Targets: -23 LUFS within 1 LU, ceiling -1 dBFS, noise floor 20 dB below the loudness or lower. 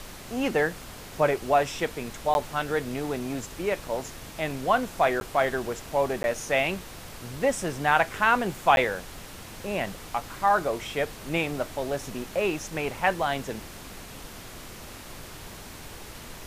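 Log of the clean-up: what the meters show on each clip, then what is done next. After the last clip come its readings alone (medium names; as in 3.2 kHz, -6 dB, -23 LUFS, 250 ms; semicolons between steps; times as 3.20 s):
dropouts 4; longest dropout 11 ms; noise floor -43 dBFS; noise floor target -47 dBFS; loudness -27.0 LUFS; peak level -6.5 dBFS; loudness target -23.0 LUFS
-> interpolate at 2.34/5.20/6.23/8.76 s, 11 ms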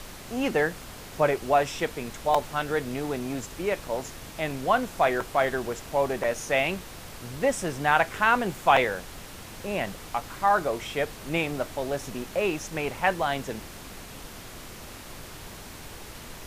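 dropouts 0; noise floor -43 dBFS; noise floor target -47 dBFS
-> noise print and reduce 6 dB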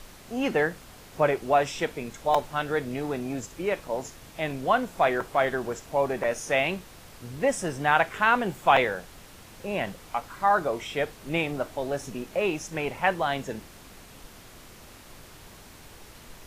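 noise floor -49 dBFS; loudness -27.0 LUFS; peak level -6.5 dBFS; loudness target -23.0 LUFS
-> trim +4 dB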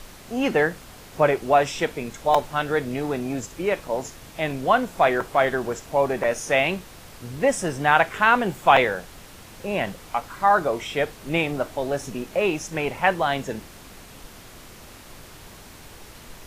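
loudness -23.0 LUFS; peak level -2.5 dBFS; noise floor -45 dBFS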